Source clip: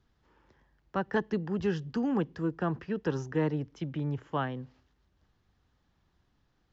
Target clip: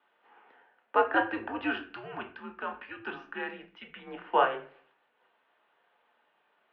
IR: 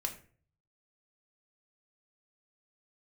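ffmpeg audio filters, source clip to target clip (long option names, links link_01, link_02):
-filter_complex "[0:a]asplit=3[link_01][link_02][link_03];[link_01]afade=type=out:start_time=1.92:duration=0.02[link_04];[link_02]equalizer=frequency=650:width_type=o:width=2.5:gain=-13,afade=type=in:start_time=1.92:duration=0.02,afade=type=out:start_time=4.06:duration=0.02[link_05];[link_03]afade=type=in:start_time=4.06:duration=0.02[link_06];[link_04][link_05][link_06]amix=inputs=3:normalize=0[link_07];[1:a]atrim=start_sample=2205[link_08];[link_07][link_08]afir=irnorm=-1:irlink=0,highpass=frequency=560:width_type=q:width=0.5412,highpass=frequency=560:width_type=q:width=1.307,lowpass=frequency=3200:width_type=q:width=0.5176,lowpass=frequency=3200:width_type=q:width=0.7071,lowpass=frequency=3200:width_type=q:width=1.932,afreqshift=-110,volume=9dB"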